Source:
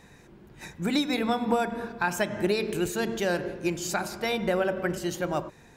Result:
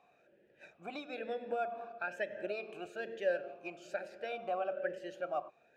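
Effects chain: talking filter a-e 1.1 Hz

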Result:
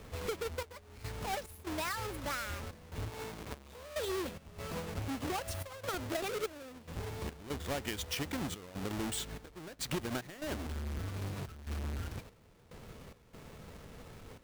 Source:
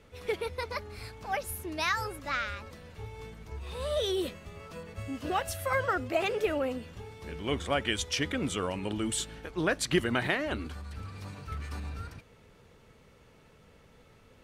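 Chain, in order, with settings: square wave that keeps the level; 3.09–4.07 s: high-pass 330 Hz -> 100 Hz 6 dB/octave; compression 4:1, threshold -40 dBFS, peak gain reduction 18.5 dB; trance gate "xxx..xx.xxxxx." 72 bpm -12 dB; trim +2.5 dB

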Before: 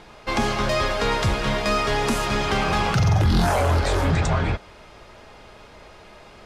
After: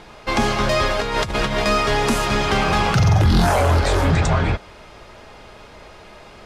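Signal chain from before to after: 0.99–1.64 s: compressor with a negative ratio -24 dBFS, ratio -0.5; trim +3.5 dB

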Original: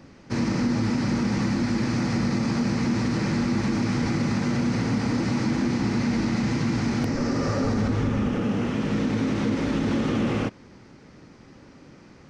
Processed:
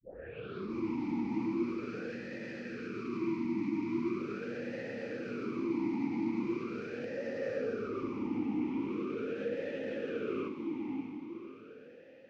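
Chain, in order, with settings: tape start-up on the opening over 0.76 s; time-frequency box 2.11–4.19 s, 450–910 Hz -13 dB; echo that smears into a reverb 583 ms, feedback 47%, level -5.5 dB; talking filter e-u 0.41 Hz

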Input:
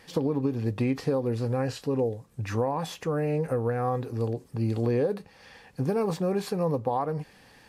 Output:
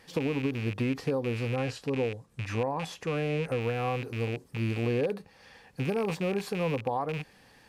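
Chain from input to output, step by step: rattle on loud lows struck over -32 dBFS, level -25 dBFS; 1.55–3.61 s: low-pass 11 kHz 12 dB/octave; trim -3 dB

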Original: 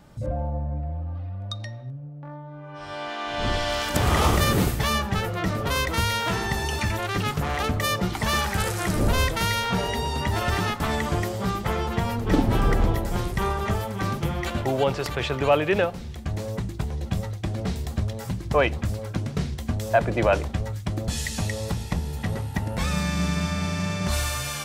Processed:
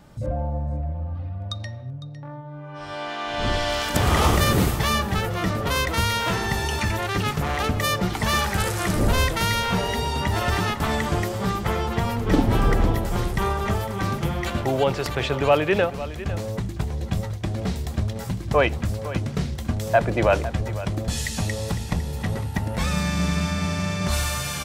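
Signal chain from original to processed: delay 505 ms -14.5 dB; trim +1.5 dB

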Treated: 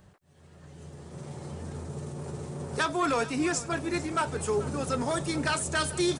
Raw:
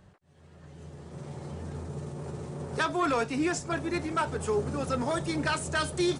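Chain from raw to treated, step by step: treble shelf 7.2 kHz +9 dB; delay 435 ms -17 dB

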